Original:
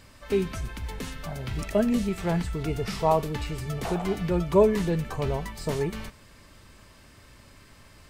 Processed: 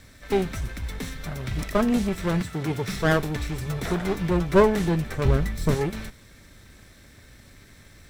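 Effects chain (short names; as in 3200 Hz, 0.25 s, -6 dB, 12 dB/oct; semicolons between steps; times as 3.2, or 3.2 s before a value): minimum comb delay 0.53 ms; 2.41–2.89 HPF 100 Hz 24 dB/oct; 5.25–5.75 low shelf 230 Hz +9.5 dB; gain +3 dB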